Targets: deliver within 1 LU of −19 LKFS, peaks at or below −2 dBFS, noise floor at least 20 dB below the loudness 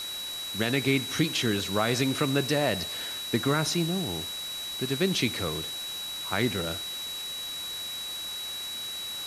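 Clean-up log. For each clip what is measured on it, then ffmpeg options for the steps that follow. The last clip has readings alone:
interfering tone 3,900 Hz; level of the tone −34 dBFS; background noise floor −36 dBFS; target noise floor −49 dBFS; integrated loudness −28.5 LKFS; sample peak −11.5 dBFS; target loudness −19.0 LKFS
→ -af "bandreject=frequency=3900:width=30"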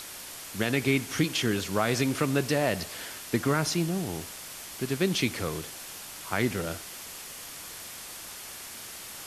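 interfering tone none found; background noise floor −42 dBFS; target noise floor −50 dBFS
→ -af "afftdn=noise_reduction=8:noise_floor=-42"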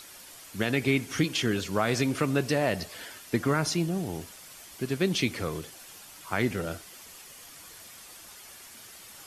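background noise floor −49 dBFS; integrated loudness −28.5 LKFS; sample peak −12.0 dBFS; target loudness −19.0 LKFS
→ -af "volume=9.5dB"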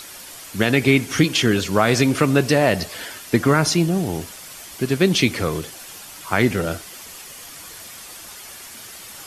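integrated loudness −19.0 LKFS; sample peak −2.5 dBFS; background noise floor −39 dBFS

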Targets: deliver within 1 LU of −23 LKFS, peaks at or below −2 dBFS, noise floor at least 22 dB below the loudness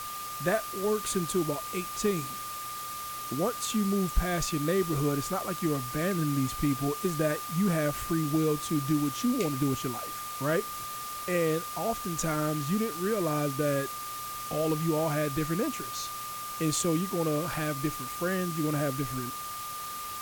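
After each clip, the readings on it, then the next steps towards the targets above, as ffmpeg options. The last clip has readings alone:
interfering tone 1,200 Hz; level of the tone −37 dBFS; background noise floor −38 dBFS; target noise floor −52 dBFS; integrated loudness −30.0 LKFS; sample peak −13.5 dBFS; target loudness −23.0 LKFS
→ -af "bandreject=frequency=1200:width=30"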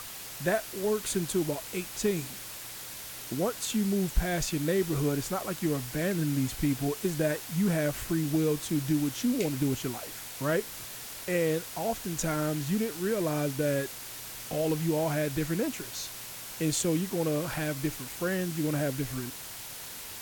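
interfering tone none found; background noise floor −42 dBFS; target noise floor −53 dBFS
→ -af "afftdn=noise_reduction=11:noise_floor=-42"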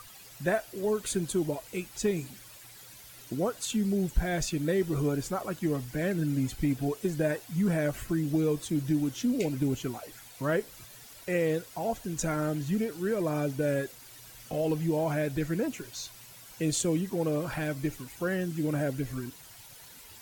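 background noise floor −50 dBFS; target noise floor −53 dBFS
→ -af "afftdn=noise_reduction=6:noise_floor=-50"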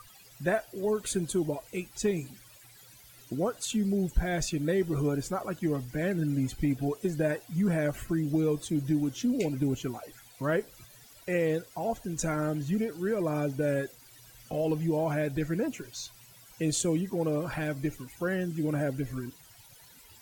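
background noise floor −55 dBFS; integrated loudness −31.0 LKFS; sample peak −14.0 dBFS; target loudness −23.0 LKFS
→ -af "volume=8dB"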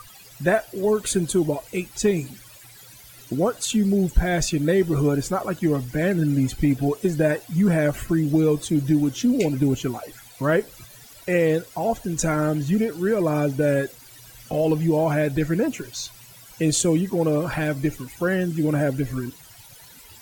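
integrated loudness −23.0 LKFS; sample peak −6.0 dBFS; background noise floor −47 dBFS

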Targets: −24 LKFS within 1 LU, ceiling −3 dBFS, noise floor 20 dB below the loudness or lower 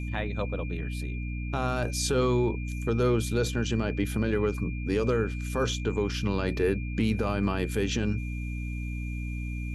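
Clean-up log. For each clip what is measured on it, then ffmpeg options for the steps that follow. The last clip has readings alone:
mains hum 60 Hz; hum harmonics up to 300 Hz; level of the hum −30 dBFS; interfering tone 2,400 Hz; level of the tone −43 dBFS; integrated loudness −29.0 LKFS; sample peak −14.5 dBFS; target loudness −24.0 LKFS
→ -af "bandreject=frequency=60:width_type=h:width=6,bandreject=frequency=120:width_type=h:width=6,bandreject=frequency=180:width_type=h:width=6,bandreject=frequency=240:width_type=h:width=6,bandreject=frequency=300:width_type=h:width=6"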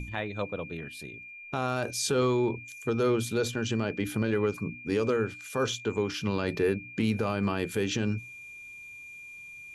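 mains hum none found; interfering tone 2,400 Hz; level of the tone −43 dBFS
→ -af "bandreject=frequency=2400:width=30"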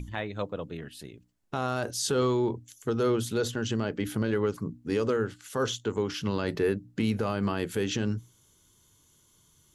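interfering tone none found; integrated loudness −30.0 LKFS; sample peak −16.0 dBFS; target loudness −24.0 LKFS
→ -af "volume=6dB"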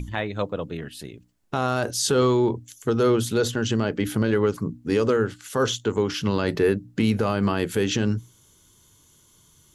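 integrated loudness −24.0 LKFS; sample peak −10.0 dBFS; background noise floor −58 dBFS

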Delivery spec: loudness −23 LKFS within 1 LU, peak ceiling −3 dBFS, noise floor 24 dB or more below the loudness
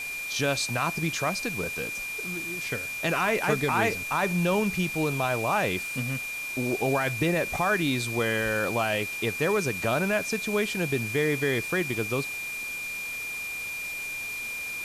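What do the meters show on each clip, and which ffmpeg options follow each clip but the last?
interfering tone 2,400 Hz; level of the tone −32 dBFS; background noise floor −34 dBFS; target noise floor −51 dBFS; integrated loudness −27.0 LKFS; sample peak −11.5 dBFS; target loudness −23.0 LKFS
→ -af "bandreject=frequency=2400:width=30"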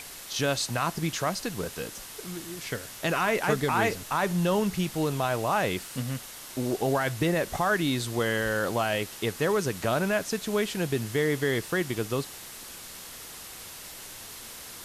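interfering tone none found; background noise floor −43 dBFS; target noise floor −52 dBFS
→ -af "afftdn=noise_reduction=9:noise_floor=-43"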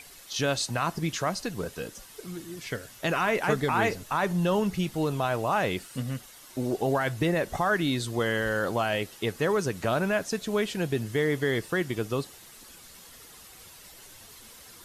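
background noise floor −50 dBFS; target noise floor −52 dBFS
→ -af "afftdn=noise_reduction=6:noise_floor=-50"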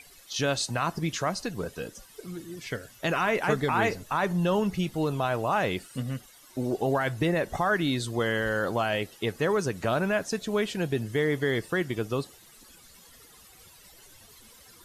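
background noise floor −54 dBFS; integrated loudness −28.5 LKFS; sample peak −12.5 dBFS; target loudness −23.0 LKFS
→ -af "volume=5.5dB"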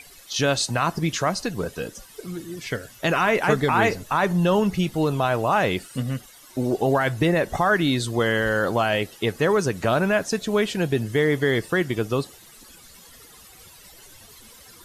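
integrated loudness −23.0 LKFS; sample peak −7.0 dBFS; background noise floor −48 dBFS

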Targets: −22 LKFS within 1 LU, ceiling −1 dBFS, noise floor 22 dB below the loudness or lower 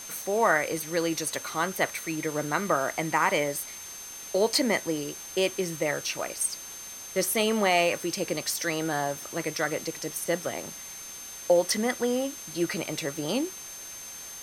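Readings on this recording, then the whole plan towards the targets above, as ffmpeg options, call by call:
interfering tone 6,300 Hz; level of the tone −41 dBFS; background noise floor −42 dBFS; target noise floor −50 dBFS; integrated loudness −28.0 LKFS; sample peak −9.5 dBFS; target loudness −22.0 LKFS
→ -af "bandreject=frequency=6300:width=30"
-af "afftdn=noise_reduction=8:noise_floor=-42"
-af "volume=6dB"

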